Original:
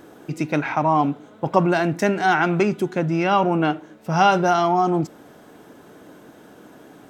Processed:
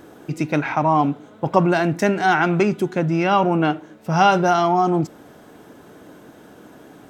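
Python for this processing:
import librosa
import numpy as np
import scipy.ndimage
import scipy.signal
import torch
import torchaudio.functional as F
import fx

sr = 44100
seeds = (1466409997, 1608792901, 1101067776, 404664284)

y = fx.peak_eq(x, sr, hz=60.0, db=4.5, octaves=1.8)
y = y * librosa.db_to_amplitude(1.0)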